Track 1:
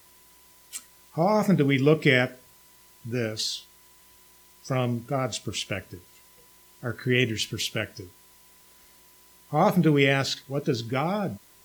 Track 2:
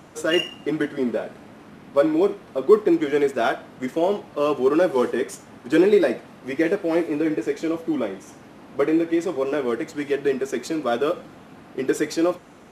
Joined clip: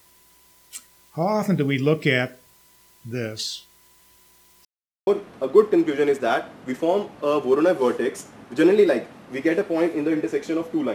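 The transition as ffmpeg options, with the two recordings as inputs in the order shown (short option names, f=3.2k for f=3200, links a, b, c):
-filter_complex "[0:a]apad=whole_dur=10.94,atrim=end=10.94,asplit=2[a][b];[a]atrim=end=4.65,asetpts=PTS-STARTPTS,afade=t=out:st=4.646:d=0.004:c=hsin[c];[b]atrim=start=4.65:end=5.07,asetpts=PTS-STARTPTS,volume=0[d];[1:a]atrim=start=2.21:end=8.08,asetpts=PTS-STARTPTS,afade=t=in:d=0.004:c=hsin[e];[c][d][e]concat=n=3:v=0:a=1"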